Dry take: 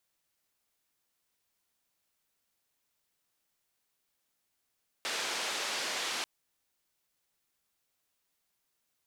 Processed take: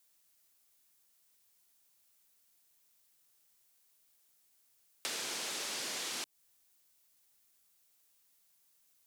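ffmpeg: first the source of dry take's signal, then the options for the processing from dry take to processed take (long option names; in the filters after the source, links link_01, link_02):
-f lavfi -i "anoisesrc=color=white:duration=1.19:sample_rate=44100:seed=1,highpass=frequency=360,lowpass=frequency=5100,volume=-23.8dB"
-filter_complex "[0:a]highshelf=frequency=4600:gain=11,acrossover=split=410[link_01][link_02];[link_02]acompressor=threshold=-37dB:ratio=6[link_03];[link_01][link_03]amix=inputs=2:normalize=0"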